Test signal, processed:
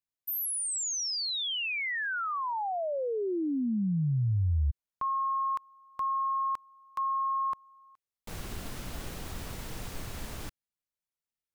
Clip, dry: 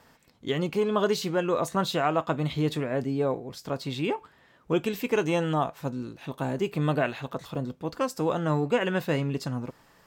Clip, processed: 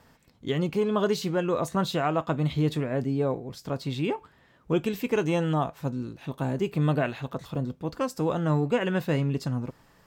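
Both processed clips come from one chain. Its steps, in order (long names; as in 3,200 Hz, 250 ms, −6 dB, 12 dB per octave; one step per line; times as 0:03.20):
low-shelf EQ 220 Hz +7.5 dB
level −2 dB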